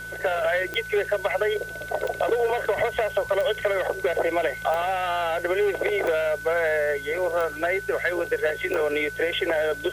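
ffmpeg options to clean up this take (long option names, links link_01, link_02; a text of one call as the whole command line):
ffmpeg -i in.wav -af "adeclick=threshold=4,bandreject=frequency=56.2:width_type=h:width=4,bandreject=frequency=112.4:width_type=h:width=4,bandreject=frequency=168.6:width_type=h:width=4,bandreject=frequency=1500:width=30,afwtdn=0.004" out.wav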